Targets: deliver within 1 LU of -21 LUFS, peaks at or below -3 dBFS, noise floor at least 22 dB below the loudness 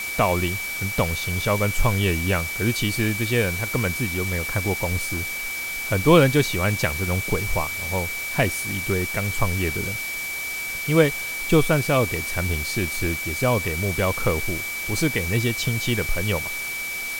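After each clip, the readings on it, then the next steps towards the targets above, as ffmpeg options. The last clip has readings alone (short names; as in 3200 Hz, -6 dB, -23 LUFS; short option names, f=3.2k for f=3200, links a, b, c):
steady tone 2300 Hz; tone level -28 dBFS; noise floor -30 dBFS; noise floor target -45 dBFS; loudness -23.0 LUFS; peak -2.5 dBFS; loudness target -21.0 LUFS
-> -af "bandreject=f=2.3k:w=30"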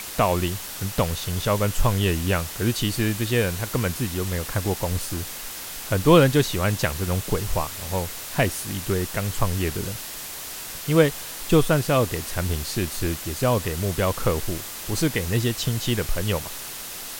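steady tone none; noise floor -35 dBFS; noise floor target -47 dBFS
-> -af "afftdn=nr=12:nf=-35"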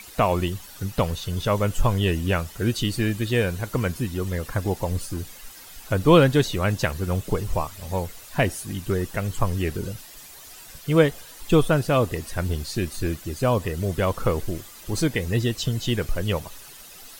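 noise floor -44 dBFS; noise floor target -47 dBFS
-> -af "afftdn=nr=6:nf=-44"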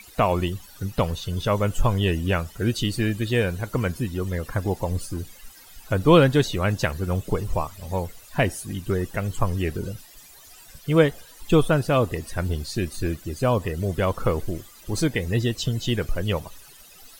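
noise floor -48 dBFS; loudness -24.5 LUFS; peak -3.0 dBFS; loudness target -21.0 LUFS
-> -af "volume=3.5dB,alimiter=limit=-3dB:level=0:latency=1"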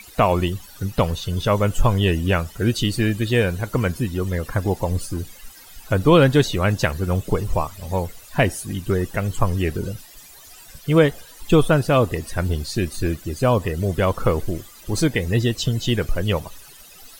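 loudness -21.5 LUFS; peak -3.0 dBFS; noise floor -45 dBFS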